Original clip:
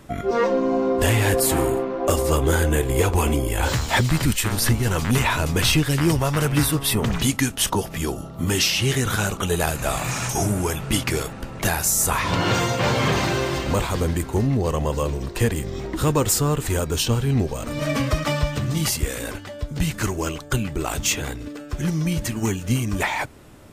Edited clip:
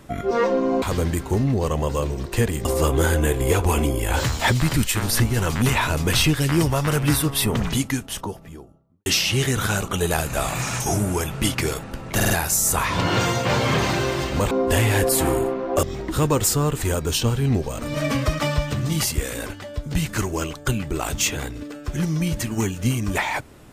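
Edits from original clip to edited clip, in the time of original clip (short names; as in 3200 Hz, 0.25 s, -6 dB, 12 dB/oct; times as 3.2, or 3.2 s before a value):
0.82–2.14 swap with 13.85–15.68
6.89–8.55 studio fade out
11.64 stutter 0.05 s, 4 plays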